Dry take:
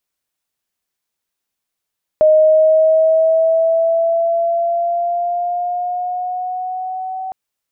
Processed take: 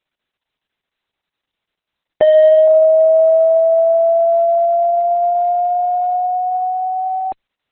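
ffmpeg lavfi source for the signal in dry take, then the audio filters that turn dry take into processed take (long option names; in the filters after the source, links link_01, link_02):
-f lavfi -i "aevalsrc='pow(10,(-6.5-15.5*t/5.11)/20)*sin(2*PI*619*5.11/(3.5*log(2)/12)*(exp(3.5*log(2)/12*t/5.11)-1))':duration=5.11:sample_rate=44100"
-filter_complex "[0:a]asplit=2[link_01][link_02];[link_02]acompressor=threshold=-20dB:ratio=8,volume=-1dB[link_03];[link_01][link_03]amix=inputs=2:normalize=0,asoftclip=type=hard:threshold=-6dB" -ar 48000 -c:a libopus -b:a 6k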